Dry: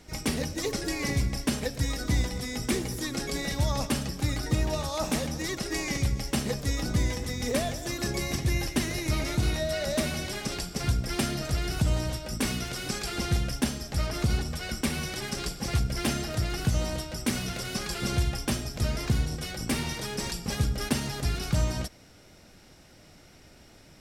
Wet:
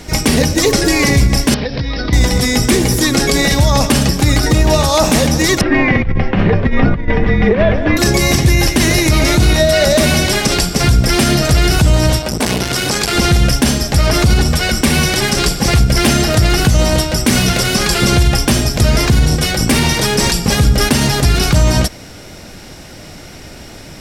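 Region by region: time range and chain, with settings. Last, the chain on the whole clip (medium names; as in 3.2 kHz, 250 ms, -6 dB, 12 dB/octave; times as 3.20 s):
1.54–2.13 s: steep low-pass 5.2 kHz 72 dB/octave + compression 16:1, threshold -34 dBFS
5.61–7.97 s: low-pass 2.5 kHz 24 dB/octave + frequency shift -39 Hz + compressor with a negative ratio -29 dBFS, ratio -0.5
12.19–13.15 s: high-pass 59 Hz + transformer saturation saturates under 1.3 kHz
whole clip: band-stop 1.3 kHz, Q 28; loudness maximiser +21 dB; trim -1 dB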